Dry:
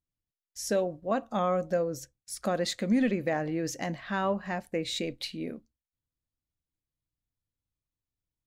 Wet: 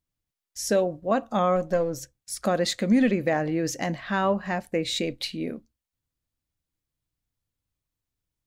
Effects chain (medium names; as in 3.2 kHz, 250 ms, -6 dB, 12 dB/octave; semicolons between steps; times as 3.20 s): 1.56–2.00 s: partial rectifier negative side -3 dB; trim +5 dB